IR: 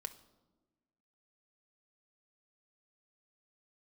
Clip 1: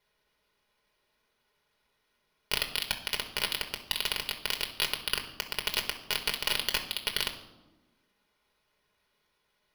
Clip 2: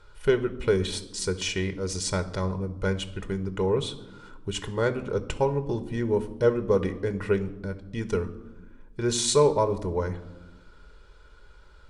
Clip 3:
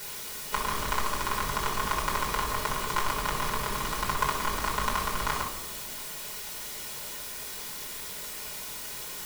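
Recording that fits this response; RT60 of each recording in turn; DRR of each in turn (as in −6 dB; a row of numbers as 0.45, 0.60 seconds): 2; 1.2 s, non-exponential decay, 1.2 s; 2.5, 8.0, −3.0 decibels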